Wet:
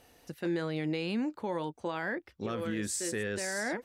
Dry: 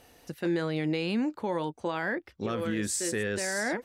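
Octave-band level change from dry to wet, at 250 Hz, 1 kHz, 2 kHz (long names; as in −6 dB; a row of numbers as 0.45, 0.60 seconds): −3.5, −3.5, −3.5 decibels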